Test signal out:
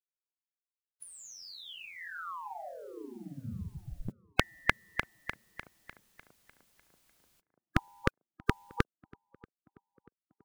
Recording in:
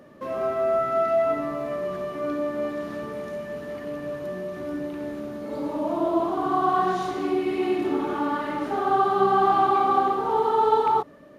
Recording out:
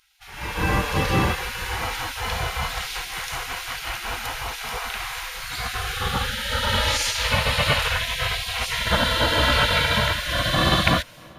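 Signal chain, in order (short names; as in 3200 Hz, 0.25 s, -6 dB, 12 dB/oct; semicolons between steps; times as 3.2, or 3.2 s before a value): spectral gate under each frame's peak -30 dB weak; low shelf 200 Hz +9 dB; AGC gain up to 16 dB; tape echo 0.636 s, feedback 64%, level -23 dB, low-pass 1100 Hz; gain +7 dB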